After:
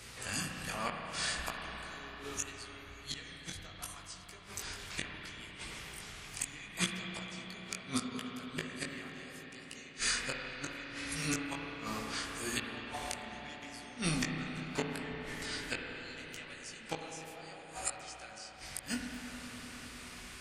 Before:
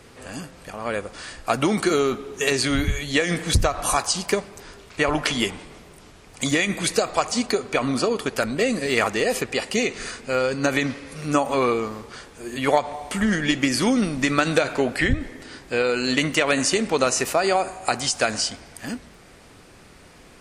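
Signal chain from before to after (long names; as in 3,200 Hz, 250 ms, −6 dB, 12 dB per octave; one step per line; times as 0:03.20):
guitar amp tone stack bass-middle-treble 5-5-5
gate with flip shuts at −28 dBFS, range −29 dB
chorus effect 0.72 Hz, delay 17 ms, depth 4.9 ms
convolution reverb RT60 5.4 s, pre-delay 32 ms, DRR 0.5 dB
level +13 dB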